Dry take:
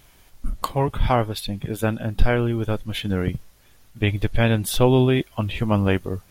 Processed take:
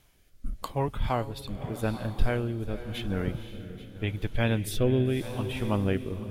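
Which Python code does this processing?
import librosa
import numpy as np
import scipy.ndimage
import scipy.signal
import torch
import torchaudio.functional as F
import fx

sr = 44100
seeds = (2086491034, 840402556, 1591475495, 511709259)

y = fx.echo_diffused(x, sr, ms=522, feedback_pct=45, wet_db=-10.5)
y = fx.rotary(y, sr, hz=0.85)
y = y + 10.0 ** (-17.0 / 20.0) * np.pad(y, (int(834 * sr / 1000.0), 0))[:len(y)]
y = y * librosa.db_to_amplitude(-6.5)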